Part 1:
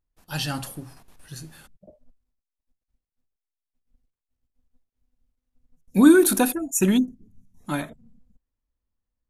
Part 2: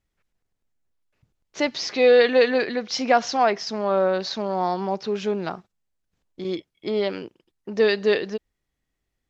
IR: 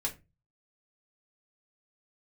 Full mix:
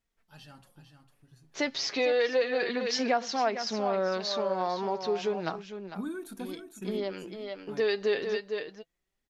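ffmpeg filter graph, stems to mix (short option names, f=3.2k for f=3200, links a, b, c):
-filter_complex "[0:a]highshelf=f=5.4k:g=-10,volume=-17dB,asplit=3[a][b][c];[b]volume=-8.5dB[d];[1:a]lowshelf=f=250:g=-5.5,volume=1.5dB,asplit=2[e][f];[f]volume=-10.5dB[g];[c]apad=whole_len=409697[h];[e][h]sidechaincompress=threshold=-39dB:ratio=8:attack=16:release=648[i];[d][g]amix=inputs=2:normalize=0,aecho=0:1:452:1[j];[a][i][j]amix=inputs=3:normalize=0,flanger=delay=4.3:depth=3.1:regen=46:speed=0.31:shape=sinusoidal,acompressor=threshold=-25dB:ratio=3"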